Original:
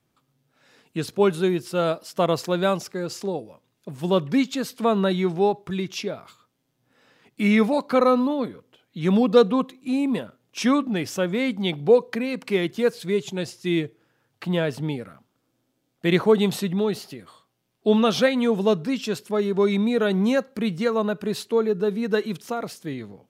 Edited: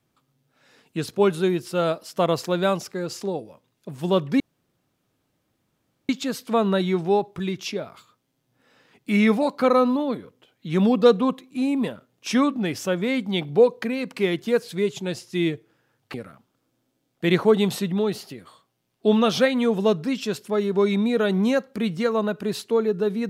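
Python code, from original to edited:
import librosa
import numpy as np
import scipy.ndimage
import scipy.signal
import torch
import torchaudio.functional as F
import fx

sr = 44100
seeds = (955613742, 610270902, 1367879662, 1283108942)

y = fx.edit(x, sr, fx.insert_room_tone(at_s=4.4, length_s=1.69),
    fx.cut(start_s=14.45, length_s=0.5), tone=tone)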